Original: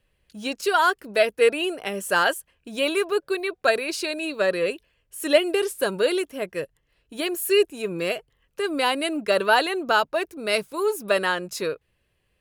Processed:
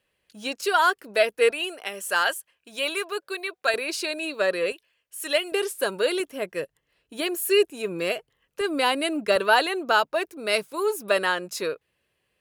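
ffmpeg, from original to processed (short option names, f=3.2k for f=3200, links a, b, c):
-af "asetnsamples=n=441:p=0,asendcmd='1.51 highpass f 1000;3.74 highpass f 360;4.72 highpass f 1200;5.52 highpass f 390;6.2 highpass f 190;8.61 highpass f 67;9.36 highpass f 260',highpass=f=360:p=1"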